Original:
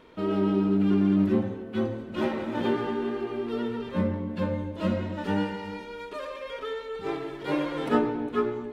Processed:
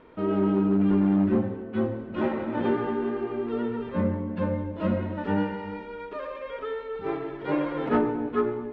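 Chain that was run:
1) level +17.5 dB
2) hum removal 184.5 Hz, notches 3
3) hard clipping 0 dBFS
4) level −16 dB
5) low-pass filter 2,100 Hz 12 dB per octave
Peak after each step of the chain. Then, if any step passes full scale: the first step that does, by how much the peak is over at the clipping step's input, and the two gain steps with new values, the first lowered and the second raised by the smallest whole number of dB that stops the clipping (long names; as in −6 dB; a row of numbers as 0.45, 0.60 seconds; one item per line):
+6.5, +7.0, 0.0, −16.0, −15.5 dBFS
step 1, 7.0 dB
step 1 +10.5 dB, step 4 −9 dB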